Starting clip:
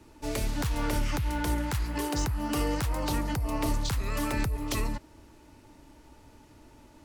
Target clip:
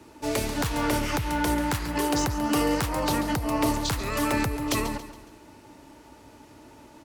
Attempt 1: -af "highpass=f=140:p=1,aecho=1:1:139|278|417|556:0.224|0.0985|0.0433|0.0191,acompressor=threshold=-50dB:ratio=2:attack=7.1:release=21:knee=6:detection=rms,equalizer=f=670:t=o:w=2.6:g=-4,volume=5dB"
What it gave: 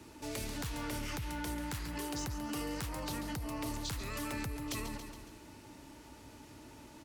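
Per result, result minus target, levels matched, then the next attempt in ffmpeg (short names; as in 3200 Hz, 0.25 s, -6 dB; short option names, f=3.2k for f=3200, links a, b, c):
compressor: peak gain reduction +12.5 dB; 500 Hz band -2.5 dB
-af "highpass=f=140:p=1,equalizer=f=670:t=o:w=2.6:g=-4,aecho=1:1:139|278|417|556:0.224|0.0985|0.0433|0.0191,volume=5dB"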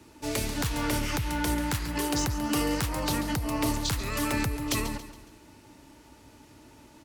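500 Hz band -3.0 dB
-af "highpass=f=140:p=1,equalizer=f=670:t=o:w=2.6:g=2,aecho=1:1:139|278|417|556:0.224|0.0985|0.0433|0.0191,volume=5dB"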